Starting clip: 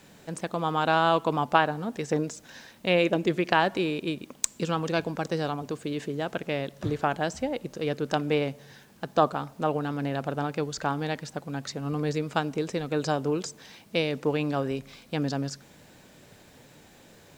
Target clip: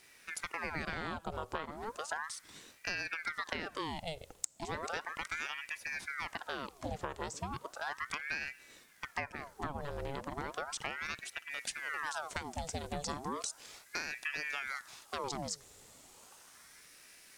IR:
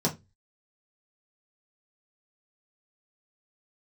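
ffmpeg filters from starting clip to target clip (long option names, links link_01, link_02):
-af "asetnsamples=nb_out_samples=441:pad=0,asendcmd='11.51 equalizer g 15',equalizer=frequency=8800:width_type=o:width=1.6:gain=8.5,acompressor=threshold=-25dB:ratio=12,aeval=exprs='val(0)*sin(2*PI*1200*n/s+1200*0.8/0.35*sin(2*PI*0.35*n/s))':channel_layout=same,volume=-6dB"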